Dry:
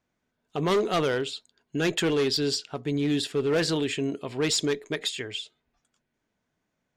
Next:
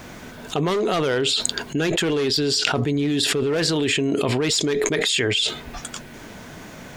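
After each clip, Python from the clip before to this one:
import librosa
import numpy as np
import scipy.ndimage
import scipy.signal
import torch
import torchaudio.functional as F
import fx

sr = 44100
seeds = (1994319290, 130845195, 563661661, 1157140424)

y = fx.env_flatten(x, sr, amount_pct=100)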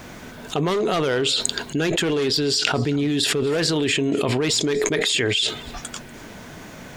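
y = x + 10.0 ** (-21.0 / 20.0) * np.pad(x, (int(241 * sr / 1000.0), 0))[:len(x)]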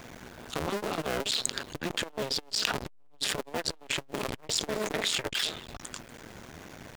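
y = fx.cycle_switch(x, sr, every=2, mode='muted')
y = fx.transformer_sat(y, sr, knee_hz=2100.0)
y = y * librosa.db_to_amplitude(-4.5)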